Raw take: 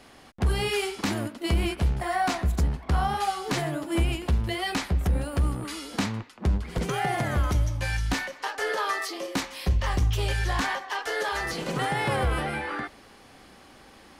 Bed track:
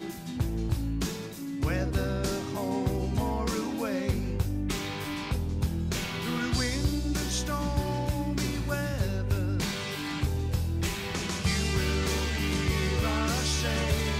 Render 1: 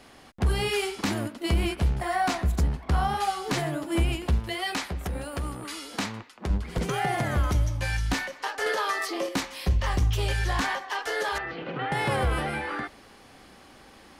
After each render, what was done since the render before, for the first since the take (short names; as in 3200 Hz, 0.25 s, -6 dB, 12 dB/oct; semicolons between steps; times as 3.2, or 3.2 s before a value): 4.39–6.5 low shelf 260 Hz -9.5 dB; 8.66–9.29 three-band squash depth 100%; 11.38–11.92 speaker cabinet 110–2800 Hz, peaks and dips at 150 Hz -5 dB, 210 Hz -9 dB, 410 Hz -4 dB, 610 Hz -4 dB, 1000 Hz -7 dB, 2000 Hz -4 dB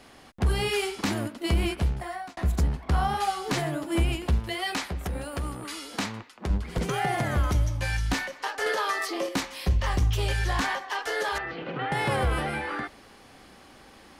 1.77–2.37 fade out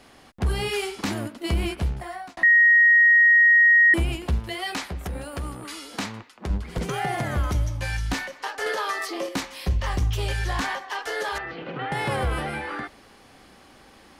2.43–3.94 bleep 1880 Hz -12 dBFS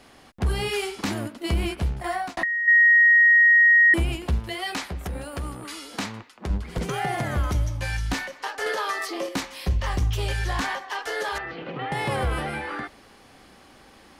2.04–2.68 negative-ratio compressor -21 dBFS, ratio -0.5; 11.7–12.16 notch 1500 Hz, Q 6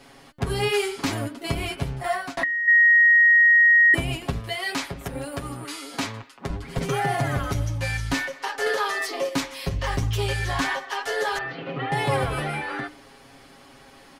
comb 7.3 ms, depth 83%; de-hum 300.9 Hz, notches 15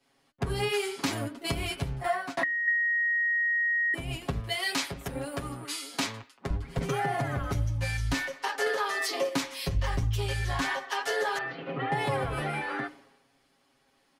compressor 8:1, threshold -26 dBFS, peak gain reduction 11.5 dB; three-band expander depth 100%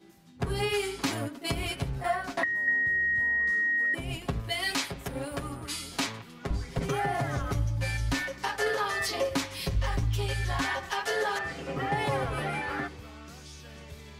add bed track -18.5 dB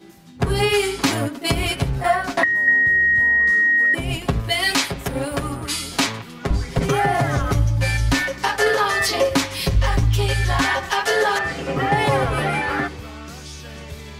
gain +10.5 dB